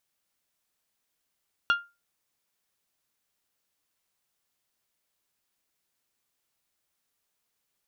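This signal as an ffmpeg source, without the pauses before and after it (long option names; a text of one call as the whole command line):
ffmpeg -f lavfi -i "aevalsrc='0.15*pow(10,-3*t/0.26)*sin(2*PI*1400*t)+0.0668*pow(10,-3*t/0.16)*sin(2*PI*2800*t)+0.0299*pow(10,-3*t/0.141)*sin(2*PI*3360*t)+0.0133*pow(10,-3*t/0.121)*sin(2*PI*4200*t)+0.00596*pow(10,-3*t/0.099)*sin(2*PI*5600*t)':duration=0.89:sample_rate=44100" out.wav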